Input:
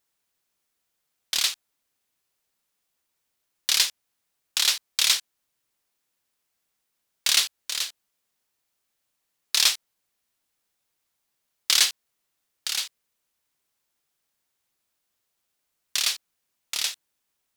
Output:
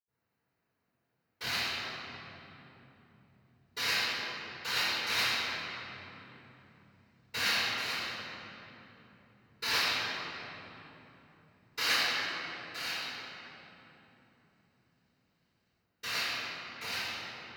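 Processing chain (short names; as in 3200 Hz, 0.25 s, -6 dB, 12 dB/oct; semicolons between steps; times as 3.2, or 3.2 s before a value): bell 6900 Hz -14 dB 1.3 oct; notch 3400 Hz, Q 5.9; reverb RT60 3.5 s, pre-delay 77 ms; gain -3.5 dB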